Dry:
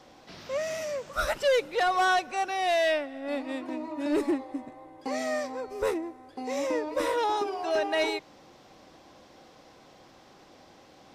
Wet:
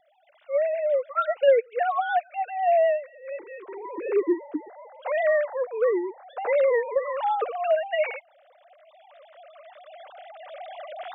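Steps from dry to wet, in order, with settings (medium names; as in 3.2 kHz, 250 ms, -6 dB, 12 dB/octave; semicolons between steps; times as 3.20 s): formants replaced by sine waves; recorder AGC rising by 8.3 dB/s; vibrato 8.1 Hz 32 cents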